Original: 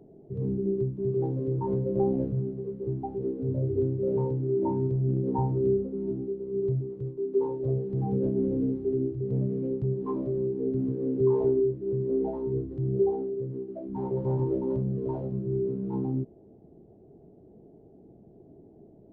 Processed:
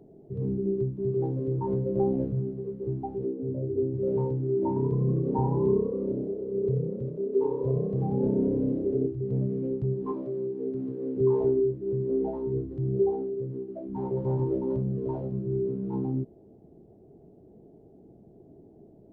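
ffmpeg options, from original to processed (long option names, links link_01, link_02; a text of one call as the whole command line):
ffmpeg -i in.wav -filter_complex "[0:a]asettb=1/sr,asplit=3[link_01][link_02][link_03];[link_01]atrim=end=3.254[link_04];[link_02]atrim=start=3.25:end=3.94,asetpts=PTS-STARTPTS,afade=type=in:duration=0.004:curve=qsin,afade=type=out:start_time=0.686:duration=0.004:curve=qsin,bandpass=frequency=350:width_type=q:width=0.64[link_05];[link_03]atrim=start=3.936[link_06];[link_04][link_05]acrossfade=duration=0.004:curve1=hsin:curve2=qsin[link_07];[link_07][link_06]acrossfade=duration=0.004:curve1=qsin:curve2=hsin,asettb=1/sr,asplit=3[link_08][link_09][link_10];[link_08]atrim=end=4.684[link_11];[link_09]atrim=start=4.68:end=9.07,asetpts=PTS-STARTPTS,afade=type=in:duration=0.004:curve=qsin,afade=type=out:start_time=4.386:duration=0.004:curve=qsin,asplit=9[link_12][link_13][link_14][link_15][link_16][link_17][link_18][link_19][link_20];[link_13]adelay=81,afreqshift=32,volume=-7dB[link_21];[link_14]adelay=162,afreqshift=64,volume=-11.4dB[link_22];[link_15]adelay=243,afreqshift=96,volume=-15.9dB[link_23];[link_16]adelay=324,afreqshift=128,volume=-20.3dB[link_24];[link_17]adelay=405,afreqshift=160,volume=-24.7dB[link_25];[link_18]adelay=486,afreqshift=192,volume=-29.2dB[link_26];[link_19]adelay=567,afreqshift=224,volume=-33.6dB[link_27];[link_20]adelay=648,afreqshift=256,volume=-38.1dB[link_28];[link_12][link_21][link_22][link_23][link_24][link_25][link_26][link_27][link_28]amix=inputs=9:normalize=0,atrim=end_sample=193599[link_29];[link_10]atrim=start=9.066[link_30];[link_11][link_29]acrossfade=duration=0.004:curve1=hsin:curve2=qsin[link_31];[link_31][link_30]acrossfade=duration=0.004:curve1=qsin:curve2=hsin,asettb=1/sr,asplit=3[link_32][link_33][link_34];[link_32]atrim=end=10.124[link_35];[link_33]atrim=start=10.12:end=11.17,asetpts=PTS-STARTPTS,afade=type=in:duration=0.004:curve=qsin,afade=type=out:start_time=1.046:duration=0.004:curve=qsin,highpass=frequency=330:poles=1[link_36];[link_34]atrim=start=11.166[link_37];[link_35][link_36]acrossfade=duration=0.004:curve1=hsin:curve2=qsin[link_38];[link_38][link_37]acrossfade=duration=0.004:curve1=qsin:curve2=hsin" out.wav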